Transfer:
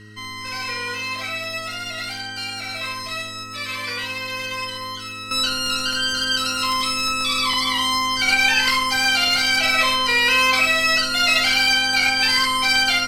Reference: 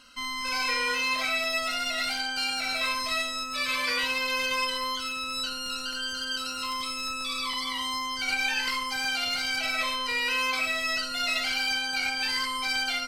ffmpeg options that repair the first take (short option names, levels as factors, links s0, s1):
-af "bandreject=f=105.9:t=h:w=4,bandreject=f=211.8:t=h:w=4,bandreject=f=317.7:t=h:w=4,bandreject=f=423.6:t=h:w=4,bandreject=f=1900:w=30,asetnsamples=n=441:p=0,asendcmd='5.31 volume volume -10.5dB',volume=1"